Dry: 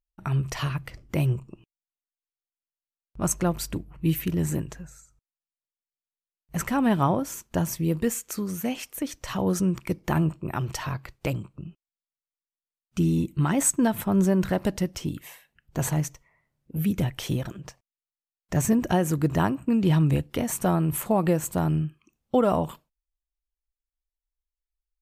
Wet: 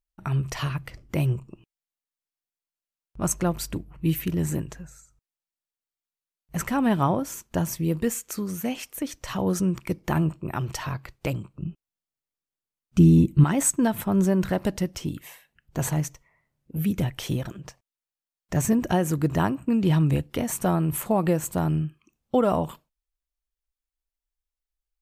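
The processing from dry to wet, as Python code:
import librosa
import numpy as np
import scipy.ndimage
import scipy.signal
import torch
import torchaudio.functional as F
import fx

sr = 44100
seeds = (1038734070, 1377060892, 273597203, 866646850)

y = fx.low_shelf(x, sr, hz=420.0, db=9.5, at=(11.62, 13.44))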